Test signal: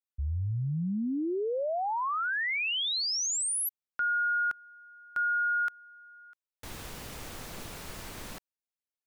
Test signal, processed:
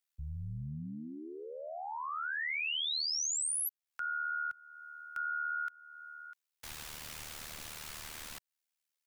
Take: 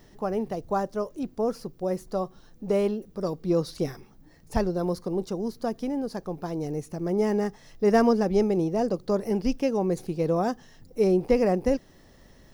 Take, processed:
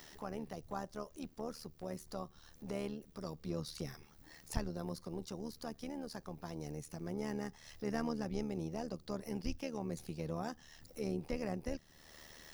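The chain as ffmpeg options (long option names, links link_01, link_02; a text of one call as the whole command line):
ffmpeg -i in.wav -filter_complex "[0:a]acrossover=split=190[link_01][link_02];[link_02]acompressor=threshold=-49dB:ratio=2:attack=0.17:release=437:knee=2.83:detection=peak[link_03];[link_01][link_03]amix=inputs=2:normalize=0,tremolo=f=76:d=0.71,tiltshelf=frequency=660:gain=-8.5,volume=2dB" out.wav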